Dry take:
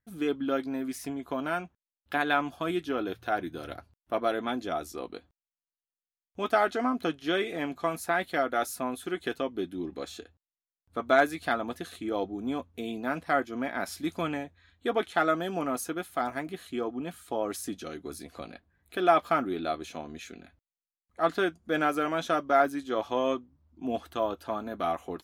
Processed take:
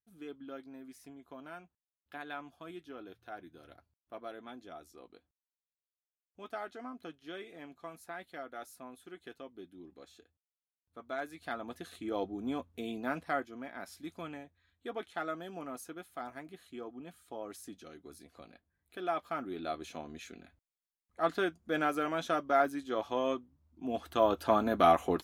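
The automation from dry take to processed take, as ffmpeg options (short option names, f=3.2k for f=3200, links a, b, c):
-af "volume=14dB,afade=t=in:st=11.2:d=1.03:silence=0.237137,afade=t=out:st=13.11:d=0.47:silence=0.398107,afade=t=in:st=19.3:d=0.57:silence=0.421697,afade=t=in:st=23.93:d=0.59:silence=0.298538"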